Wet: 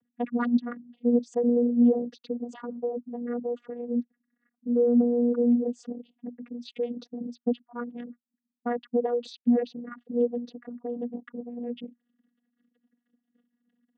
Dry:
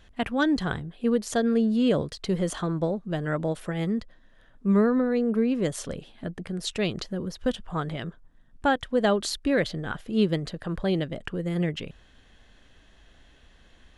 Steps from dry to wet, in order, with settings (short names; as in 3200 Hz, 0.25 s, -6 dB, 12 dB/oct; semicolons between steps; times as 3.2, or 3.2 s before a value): formant sharpening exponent 3; vocoder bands 16, saw 240 Hz